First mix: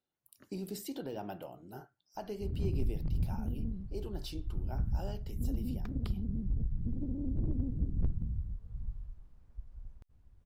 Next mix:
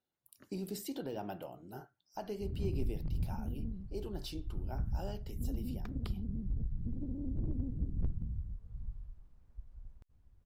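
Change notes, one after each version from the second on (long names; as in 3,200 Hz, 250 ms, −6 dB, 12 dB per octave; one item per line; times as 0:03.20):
background −3.0 dB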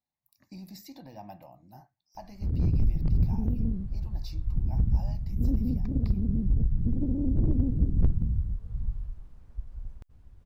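speech: add phaser with its sweep stopped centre 2,100 Hz, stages 8
background +11.5 dB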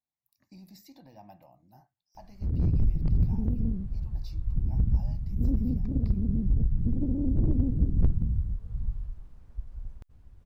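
speech −6.0 dB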